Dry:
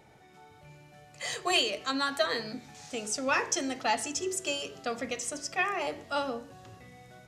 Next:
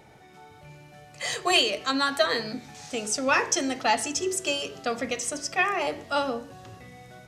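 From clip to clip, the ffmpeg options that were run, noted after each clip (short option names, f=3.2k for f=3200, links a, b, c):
-af "bandreject=f=7.1k:w=28,volume=5dB"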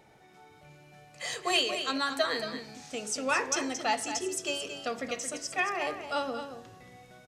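-filter_complex "[0:a]equalizer=f=86:w=0.85:g=-4.5,asplit=2[a][b];[b]aecho=0:1:225:0.355[c];[a][c]amix=inputs=2:normalize=0,volume=-5.5dB"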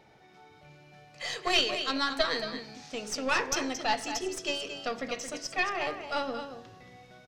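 -af "aeval=exprs='0.211*(cos(1*acos(clip(val(0)/0.211,-1,1)))-cos(1*PI/2))+0.075*(cos(2*acos(clip(val(0)/0.211,-1,1)))-cos(2*PI/2))+0.00596*(cos(6*acos(clip(val(0)/0.211,-1,1)))-cos(6*PI/2))':c=same,highshelf=f=6.5k:t=q:w=1.5:g=-7"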